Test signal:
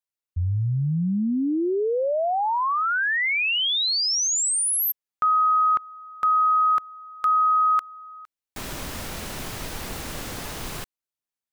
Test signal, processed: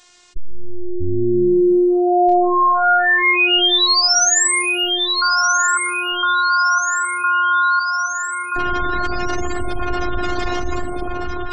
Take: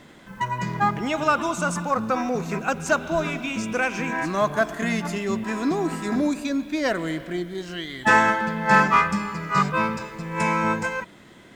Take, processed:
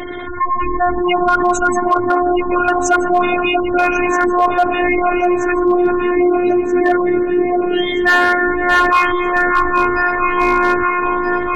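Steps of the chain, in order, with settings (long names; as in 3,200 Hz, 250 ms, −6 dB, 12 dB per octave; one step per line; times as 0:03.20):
gate on every frequency bin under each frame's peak −15 dB strong
Butterworth low-pass 7,800 Hz 48 dB per octave
on a send: delay that swaps between a low-pass and a high-pass 639 ms, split 930 Hz, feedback 65%, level −5 dB
on the sum: phases set to zero 356 Hz
in parallel at −3.5 dB: wave folding −16 dBFS
on the sum: envelope flattener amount 50%
level +5 dB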